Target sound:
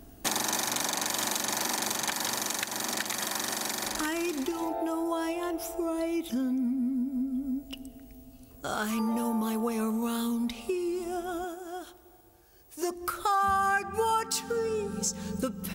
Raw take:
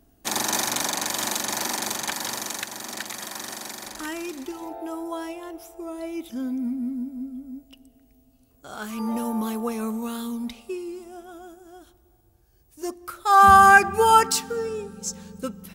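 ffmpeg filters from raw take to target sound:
-filter_complex "[0:a]asettb=1/sr,asplit=3[a][b][c];[a]atrim=end=11.444[d];[b]atrim=start=11.44:end=12.91,asetpts=PTS-STARTPTS,afade=t=in:d=0.004:c=qsin,afade=t=out:st=1.466:d=0.004:c=qsin,bass=f=250:g=-13,treble=f=4k:g=-2[e];[c]atrim=start=12.906[f];[d][e]acrossfade=d=0.004:c1=hsin:c2=qsin[g];[g][f]acrossfade=d=0.004:c1=qsin:c2=hsin,acompressor=threshold=-38dB:ratio=4,volume=9dB"

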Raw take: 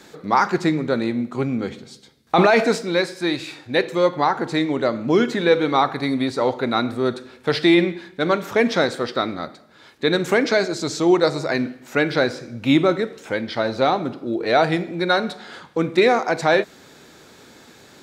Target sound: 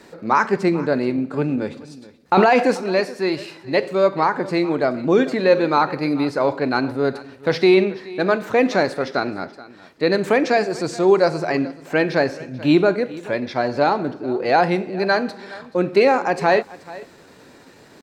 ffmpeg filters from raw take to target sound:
-af "highshelf=f=2.4k:g=-7.5,aecho=1:1:431:0.112,asetrate=48091,aresample=44100,atempo=0.917004,volume=1.5dB"

